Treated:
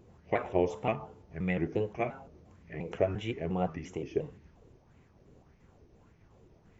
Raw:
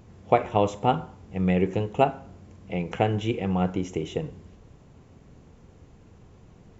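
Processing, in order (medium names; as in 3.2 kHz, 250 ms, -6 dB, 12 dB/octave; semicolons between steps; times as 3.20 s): pitch shift switched off and on -2.5 st, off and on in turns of 175 ms; de-hum 437.9 Hz, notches 16; sweeping bell 1.7 Hz 370–2200 Hz +10 dB; trim -9 dB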